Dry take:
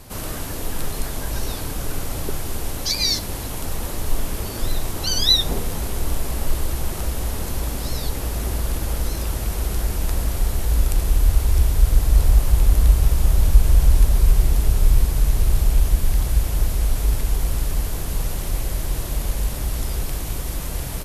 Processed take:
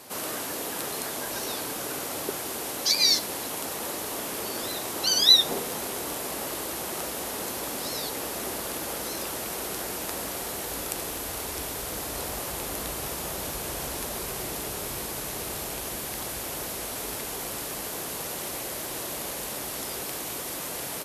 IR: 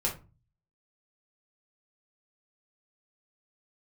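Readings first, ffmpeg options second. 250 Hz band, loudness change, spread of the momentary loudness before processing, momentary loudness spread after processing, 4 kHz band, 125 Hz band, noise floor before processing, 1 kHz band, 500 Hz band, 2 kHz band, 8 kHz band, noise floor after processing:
-5.5 dB, -5.5 dB, 11 LU, 8 LU, 0.0 dB, -22.5 dB, -29 dBFS, 0.0 dB, -1.0 dB, 0.0 dB, 0.0 dB, -35 dBFS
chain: -af "highpass=310"

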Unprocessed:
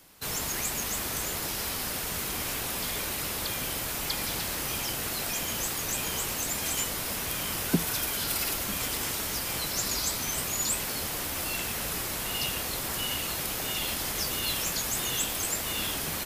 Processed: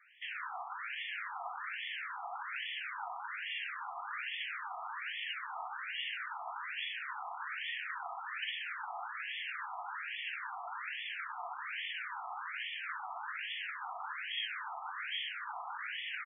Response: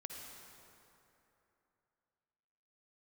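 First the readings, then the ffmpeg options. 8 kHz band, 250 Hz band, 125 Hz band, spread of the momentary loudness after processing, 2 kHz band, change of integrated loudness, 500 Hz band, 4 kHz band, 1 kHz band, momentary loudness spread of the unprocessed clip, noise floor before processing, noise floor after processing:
under -40 dB, under -40 dB, under -40 dB, 4 LU, -2.5 dB, -11.0 dB, -18.0 dB, -10.0 dB, -2.5 dB, 3 LU, -33 dBFS, -44 dBFS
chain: -filter_complex "[0:a]bandreject=f=730:w=15,afreqshift=380,aeval=exprs='clip(val(0),-1,0.0224)':c=same,asplit=2[s0][s1];[s1]aecho=0:1:63|126|189|252|315|378:0.251|0.141|0.0788|0.0441|0.0247|0.0138[s2];[s0][s2]amix=inputs=2:normalize=0,afftfilt=real='re*between(b*sr/1024,930*pow(2500/930,0.5+0.5*sin(2*PI*1.2*pts/sr))/1.41,930*pow(2500/930,0.5+0.5*sin(2*PI*1.2*pts/sr))*1.41)':imag='im*between(b*sr/1024,930*pow(2500/930,0.5+0.5*sin(2*PI*1.2*pts/sr))/1.41,930*pow(2500/930,0.5+0.5*sin(2*PI*1.2*pts/sr))*1.41)':win_size=1024:overlap=0.75,volume=1.26"

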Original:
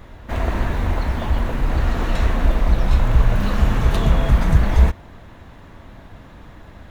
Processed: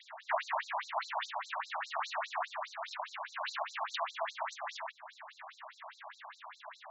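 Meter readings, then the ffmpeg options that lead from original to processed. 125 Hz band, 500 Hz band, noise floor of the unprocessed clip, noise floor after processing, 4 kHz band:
under -40 dB, -14.0 dB, -43 dBFS, -62 dBFS, -7.5 dB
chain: -af "acompressor=threshold=0.0891:ratio=6,afftfilt=real='re*between(b*sr/1024,810*pow(5600/810,0.5+0.5*sin(2*PI*4.9*pts/sr))/1.41,810*pow(5600/810,0.5+0.5*sin(2*PI*4.9*pts/sr))*1.41)':imag='im*between(b*sr/1024,810*pow(5600/810,0.5+0.5*sin(2*PI*4.9*pts/sr))/1.41,810*pow(5600/810,0.5+0.5*sin(2*PI*4.9*pts/sr))*1.41)':win_size=1024:overlap=0.75,volume=1.78"

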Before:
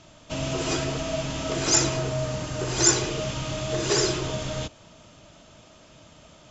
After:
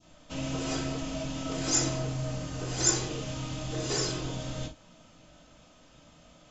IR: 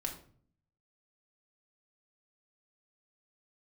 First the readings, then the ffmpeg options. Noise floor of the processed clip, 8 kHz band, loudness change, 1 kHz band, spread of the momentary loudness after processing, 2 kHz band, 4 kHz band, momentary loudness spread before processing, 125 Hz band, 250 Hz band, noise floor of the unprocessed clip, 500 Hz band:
-58 dBFS, no reading, -6.0 dB, -7.0 dB, 11 LU, -8.0 dB, -6.5 dB, 11 LU, -4.0 dB, -4.0 dB, -52 dBFS, -8.5 dB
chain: -filter_complex "[0:a]adynamicequalizer=threshold=0.01:dfrequency=1800:dqfactor=0.76:tfrequency=1800:tqfactor=0.76:attack=5:release=100:ratio=0.375:range=1.5:mode=cutabove:tftype=bell[s0];[1:a]atrim=start_sample=2205,atrim=end_sample=3087[s1];[s0][s1]afir=irnorm=-1:irlink=0,volume=0.501"

